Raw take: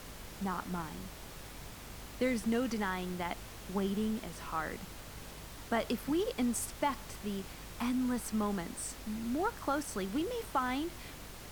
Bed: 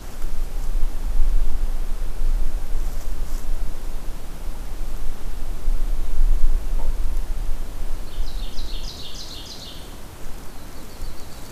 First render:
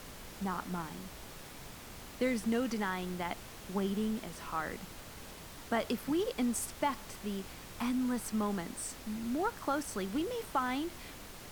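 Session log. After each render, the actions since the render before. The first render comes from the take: de-hum 50 Hz, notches 3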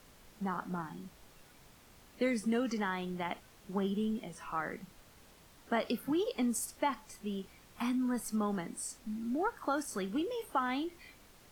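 noise print and reduce 11 dB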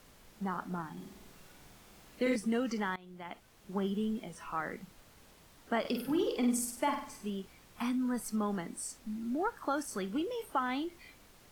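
0.92–2.36 s: flutter echo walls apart 8.6 m, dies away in 0.84 s; 2.96–3.82 s: fade in, from -19.5 dB; 5.80–7.30 s: flutter echo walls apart 8.4 m, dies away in 0.54 s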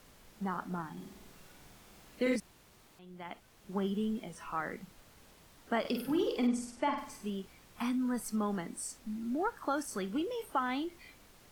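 2.40–2.99 s: room tone; 6.47–6.98 s: distance through air 95 m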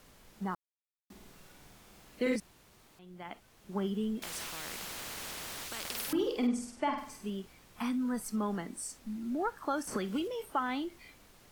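0.55–1.10 s: mute; 4.22–6.13 s: spectrum-flattening compressor 10:1; 9.87–10.28 s: three bands compressed up and down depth 100%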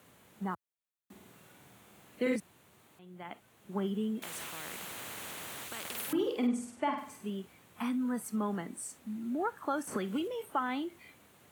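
high-pass 85 Hz 24 dB/octave; peaking EQ 5.1 kHz -9.5 dB 0.54 oct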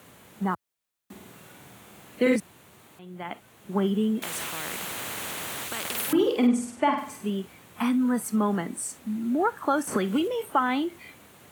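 trim +9 dB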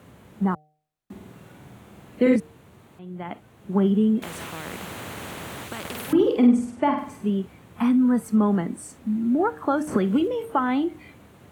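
tilt EQ -2.5 dB/octave; de-hum 152.2 Hz, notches 5

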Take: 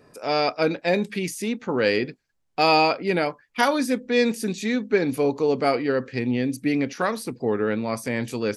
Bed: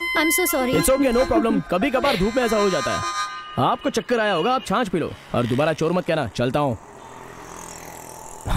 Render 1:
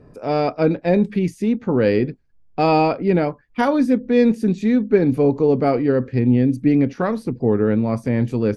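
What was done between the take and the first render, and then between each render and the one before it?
tilt EQ -4 dB/octave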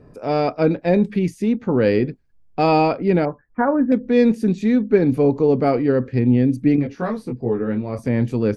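3.25–3.92 s: elliptic low-pass 1.7 kHz, stop band 80 dB; 6.76–7.99 s: detune thickener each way 13 cents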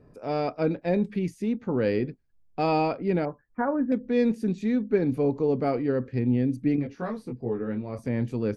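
trim -8 dB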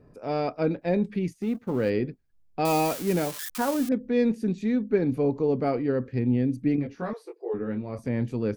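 1.33–1.90 s: companding laws mixed up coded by A; 2.65–3.89 s: zero-crossing glitches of -22 dBFS; 7.13–7.54 s: brick-wall FIR high-pass 330 Hz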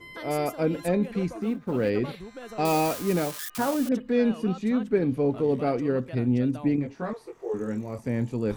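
add bed -21 dB

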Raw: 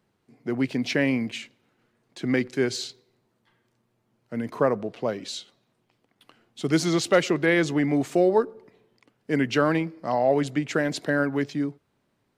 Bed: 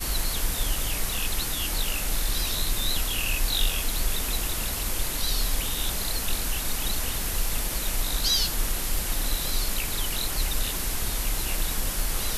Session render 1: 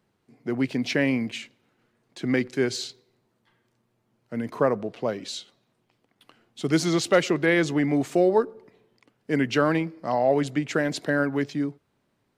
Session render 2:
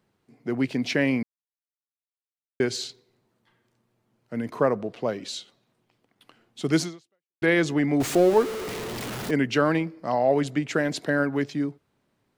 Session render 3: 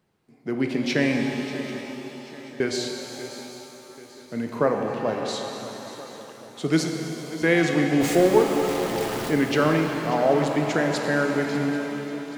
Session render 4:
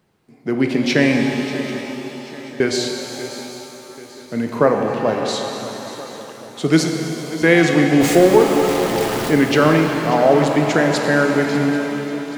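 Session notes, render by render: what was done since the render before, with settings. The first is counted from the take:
no audible change
1.23–2.60 s: mute; 6.82–7.42 s: fade out exponential; 8.00–9.31 s: jump at every zero crossing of -27 dBFS
shuffle delay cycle 786 ms, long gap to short 3:1, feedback 45%, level -15 dB; pitch-shifted reverb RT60 3.2 s, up +7 st, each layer -8 dB, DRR 3 dB
trim +7 dB; peak limiter -1 dBFS, peak gain reduction 2 dB

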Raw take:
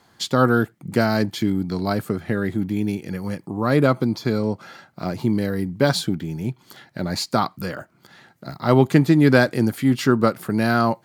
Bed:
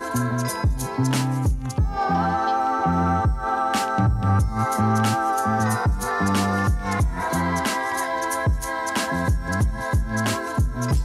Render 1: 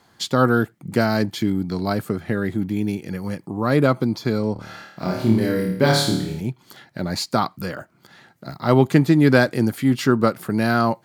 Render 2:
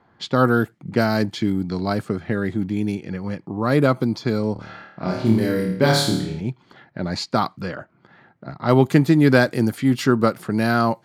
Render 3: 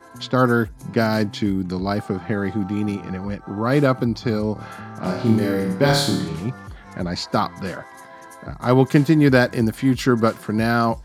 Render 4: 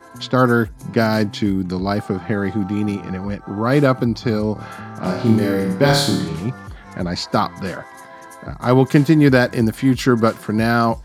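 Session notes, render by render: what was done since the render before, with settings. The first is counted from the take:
4.53–6.41 s: flutter echo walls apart 4.6 m, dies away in 0.7 s
level-controlled noise filter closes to 1.7 kHz, open at -16 dBFS
add bed -17 dB
trim +2.5 dB; peak limiter -1 dBFS, peak gain reduction 2 dB

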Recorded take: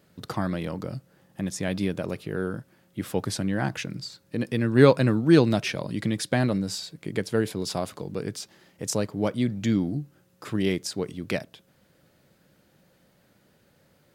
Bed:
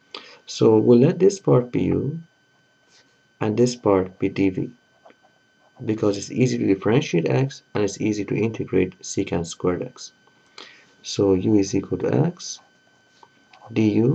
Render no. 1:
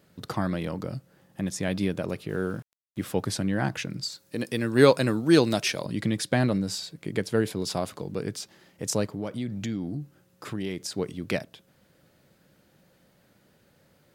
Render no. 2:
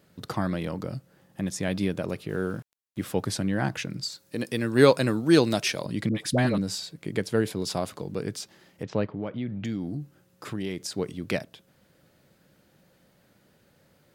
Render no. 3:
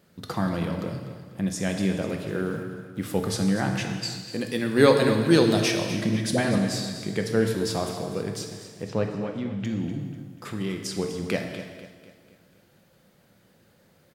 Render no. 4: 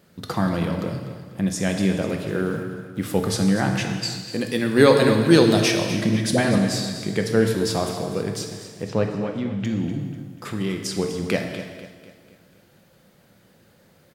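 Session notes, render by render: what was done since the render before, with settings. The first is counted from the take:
2.29–3.06 s: small samples zeroed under -49 dBFS; 4.03–5.86 s: tone controls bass -6 dB, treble +8 dB; 9.14–10.94 s: compression 3:1, threshold -29 dBFS
6.09–6.58 s: phase dispersion highs, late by 61 ms, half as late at 670 Hz; 8.83–9.65 s: low-pass 3.2 kHz 24 dB/octave
feedback delay 246 ms, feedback 46%, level -13 dB; gated-style reverb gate 480 ms falling, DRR 3.5 dB
trim +4 dB; peak limiter -2 dBFS, peak gain reduction 2.5 dB

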